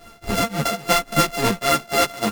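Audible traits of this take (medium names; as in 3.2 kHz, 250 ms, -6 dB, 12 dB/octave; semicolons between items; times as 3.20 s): a buzz of ramps at a fixed pitch in blocks of 64 samples; tremolo triangle 3.6 Hz, depth 95%; a shimmering, thickened sound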